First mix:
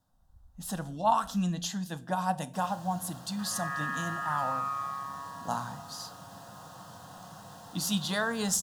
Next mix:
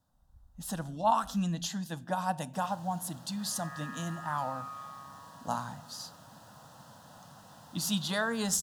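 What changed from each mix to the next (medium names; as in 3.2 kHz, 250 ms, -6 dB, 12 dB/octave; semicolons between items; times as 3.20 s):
second sound -9.0 dB; reverb: off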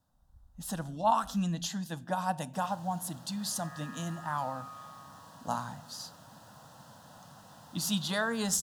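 second sound -4.0 dB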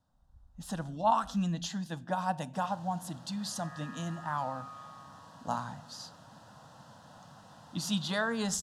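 master: add distance through air 51 m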